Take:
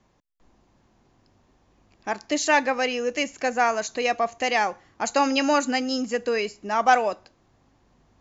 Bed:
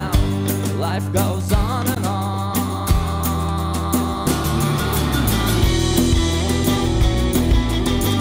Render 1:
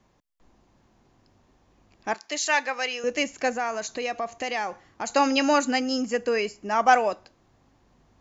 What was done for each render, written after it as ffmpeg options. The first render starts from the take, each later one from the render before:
-filter_complex "[0:a]asettb=1/sr,asplit=3[a][b][c];[a]atrim=end=2.144[d];[b]atrim=start=2.14:end=3.04,asetpts=PTS-STARTPTS,afade=t=in:d=0.004:c=qsin,afade=t=out:st=0.896:d=0.004:c=qsin,highpass=f=1.2k:p=1[e];[c]atrim=start=3.036[f];[d][e]acrossfade=d=0.004:c1=hsin:c2=qsin[g];[g][f]acrossfade=d=0.004:c1=qsin:c2=hsin,asettb=1/sr,asplit=3[h][i][j];[h]atrim=end=3.554[k];[i]atrim=start=3.55:end=5.1,asetpts=PTS-STARTPTS,afade=t=in:d=0.004:c=qsin,afade=t=out:st=1.546:d=0.004:c=qsin,acompressor=threshold=-29dB:ratio=2:attack=3.2:release=140:knee=1:detection=peak[l];[j]atrim=start=5.096[m];[k][l]acrossfade=d=0.004:c1=hsin:c2=qsin[n];[n][m]acrossfade=d=0.004:c1=qsin:c2=hsin,asettb=1/sr,asplit=3[o][p][q];[o]atrim=end=5.794[r];[p]atrim=start=5.79:end=7.1,asetpts=PTS-STARTPTS,afade=t=in:d=0.004:c=qsin,afade=t=out:st=1.306:d=0.004:c=qsin,equalizer=f=3.8k:w=7.5:g=-10.5[s];[q]atrim=start=7.096[t];[r][s]acrossfade=d=0.004:c1=hsin:c2=qsin[u];[u][t]acrossfade=d=0.004:c1=qsin:c2=hsin"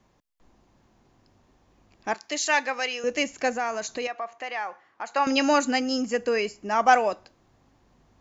-filter_complex "[0:a]asettb=1/sr,asplit=3[a][b][c];[a]atrim=end=2.204[d];[b]atrim=start=2.2:end=2.8,asetpts=PTS-STARTPTS,afade=t=in:d=0.004:c=qsin,afade=t=out:st=0.596:d=0.004:c=qsin,lowshelf=f=180:g=9[e];[c]atrim=start=2.796[f];[d][e]acrossfade=d=0.004:c1=hsin:c2=qsin[g];[g][f]acrossfade=d=0.004:c1=qsin:c2=hsin,asettb=1/sr,asplit=3[h][i][j];[h]atrim=end=4.074[k];[i]atrim=start=4.07:end=5.27,asetpts=PTS-STARTPTS,afade=t=in:d=0.004:c=qsin,afade=t=out:st=1.196:d=0.004:c=qsin,bandpass=f=1.3k:t=q:w=0.84[l];[j]atrim=start=5.266[m];[k][l]acrossfade=d=0.004:c1=hsin:c2=qsin[n];[n][m]acrossfade=d=0.004:c1=qsin:c2=hsin"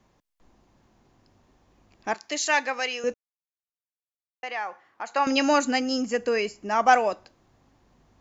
-filter_complex "[0:a]asplit=3[a][b][c];[a]atrim=end=3.14,asetpts=PTS-STARTPTS,afade=t=out:st=3.136:d=0.004:c=hsin[d];[b]atrim=start=3.14:end=4.43,asetpts=PTS-STARTPTS,volume=0[e];[c]atrim=start=4.43,asetpts=PTS-STARTPTS,afade=t=in:d=0.004:c=hsin[f];[d][e][f]concat=n=3:v=0:a=1"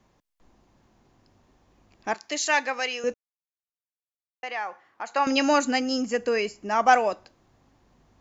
-af anull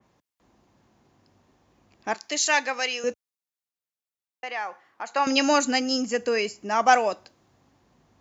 -af "highpass=73,adynamicequalizer=threshold=0.0178:dfrequency=3000:dqfactor=0.7:tfrequency=3000:tqfactor=0.7:attack=5:release=100:ratio=0.375:range=2.5:mode=boostabove:tftype=highshelf"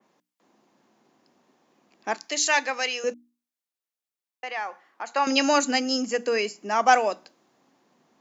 -af "highpass=f=190:w=0.5412,highpass=f=190:w=1.3066,bandreject=f=60:t=h:w=6,bandreject=f=120:t=h:w=6,bandreject=f=180:t=h:w=6,bandreject=f=240:t=h:w=6,bandreject=f=300:t=h:w=6"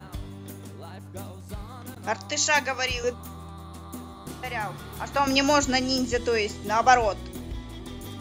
-filter_complex "[1:a]volume=-20dB[a];[0:a][a]amix=inputs=2:normalize=0"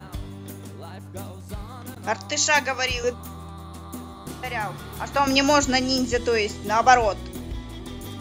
-af "volume=2.5dB"

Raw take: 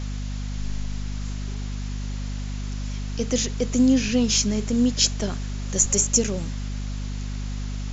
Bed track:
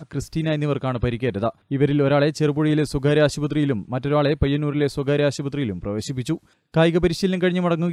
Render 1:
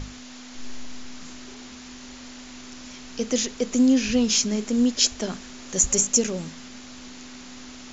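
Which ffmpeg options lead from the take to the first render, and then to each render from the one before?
-af "bandreject=f=50:t=h:w=6,bandreject=f=100:t=h:w=6,bandreject=f=150:t=h:w=6,bandreject=f=200:t=h:w=6"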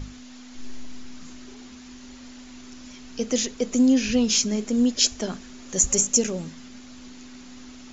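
-af "afftdn=nr=6:nf=-42"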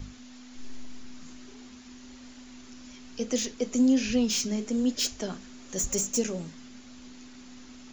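-filter_complex "[0:a]acrossover=split=290|3100[a][b][c];[c]volume=22dB,asoftclip=hard,volume=-22dB[d];[a][b][d]amix=inputs=3:normalize=0,flanger=delay=8.5:depth=4.5:regen=-74:speed=1.2:shape=sinusoidal"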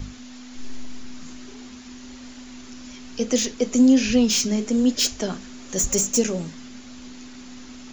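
-af "volume=7dB"

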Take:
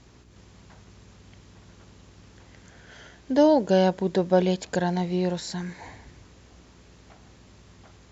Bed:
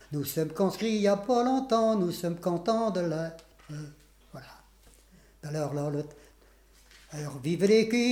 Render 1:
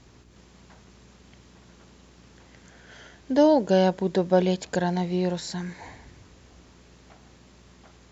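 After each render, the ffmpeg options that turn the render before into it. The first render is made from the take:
-af "bandreject=f=50:t=h:w=4,bandreject=f=100:t=h:w=4,bandreject=f=150:t=h:w=4"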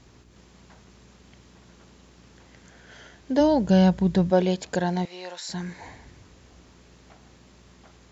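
-filter_complex "[0:a]asplit=3[a][b][c];[a]afade=t=out:st=3.39:d=0.02[d];[b]asubboost=boost=9:cutoff=140,afade=t=in:st=3.39:d=0.02,afade=t=out:st=4.3:d=0.02[e];[c]afade=t=in:st=4.3:d=0.02[f];[d][e][f]amix=inputs=3:normalize=0,asettb=1/sr,asplit=3[g][h][i];[g]atrim=end=5.054[j];[h]atrim=start=5.05:end=5.49,asetpts=PTS-STARTPTS,afade=t=in:d=0.004:c=qsin,afade=t=out:st=0.436:d=0.004:c=qsin,highpass=850[k];[i]atrim=start=5.486[l];[j][k]acrossfade=d=0.004:c1=hsin:c2=qsin[m];[m][l]acrossfade=d=0.004:c1=qsin:c2=hsin"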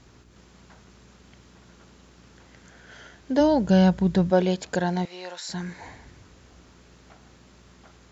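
-af "equalizer=f=1.4k:w=3.8:g=3.5"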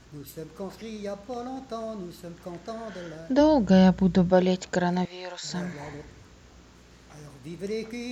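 -filter_complex "[1:a]volume=-10dB[a];[0:a][a]amix=inputs=2:normalize=0"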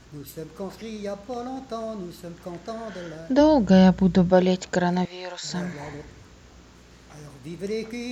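-af "volume=2.5dB"

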